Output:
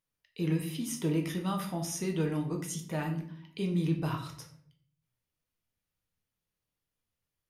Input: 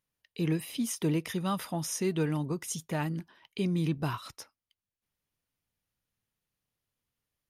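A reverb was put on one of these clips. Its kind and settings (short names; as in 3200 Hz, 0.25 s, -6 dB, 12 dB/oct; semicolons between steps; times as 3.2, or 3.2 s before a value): shoebox room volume 86 m³, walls mixed, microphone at 0.59 m; gain -4 dB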